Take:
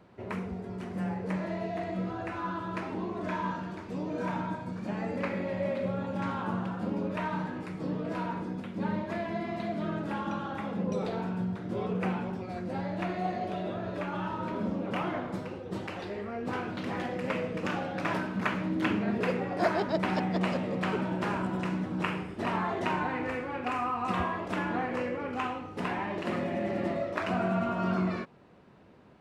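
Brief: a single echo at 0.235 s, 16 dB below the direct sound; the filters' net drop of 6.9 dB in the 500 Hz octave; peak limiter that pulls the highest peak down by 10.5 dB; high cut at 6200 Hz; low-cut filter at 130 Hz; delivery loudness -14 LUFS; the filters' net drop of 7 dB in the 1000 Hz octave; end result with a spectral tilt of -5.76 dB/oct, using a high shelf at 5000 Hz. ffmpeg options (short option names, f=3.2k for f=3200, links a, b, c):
-af "highpass=130,lowpass=6.2k,equalizer=f=500:t=o:g=-7,equalizer=f=1k:t=o:g=-6.5,highshelf=f=5k:g=-4,alimiter=level_in=4dB:limit=-24dB:level=0:latency=1,volume=-4dB,aecho=1:1:235:0.158,volume=24dB"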